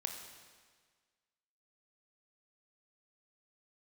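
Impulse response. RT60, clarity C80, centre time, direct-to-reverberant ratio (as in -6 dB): 1.6 s, 7.0 dB, 41 ms, 3.5 dB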